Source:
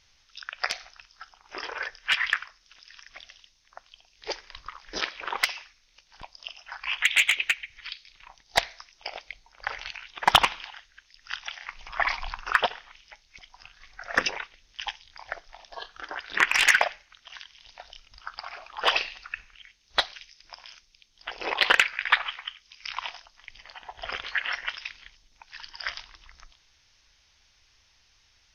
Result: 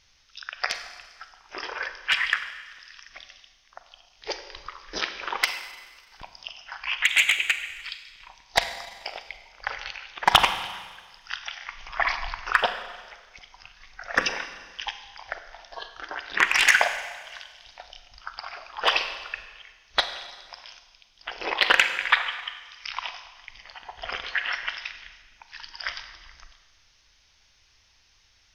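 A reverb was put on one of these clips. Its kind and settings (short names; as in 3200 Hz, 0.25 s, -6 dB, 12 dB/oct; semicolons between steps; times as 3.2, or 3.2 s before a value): Schroeder reverb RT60 1.5 s, combs from 33 ms, DRR 9 dB; gain +1 dB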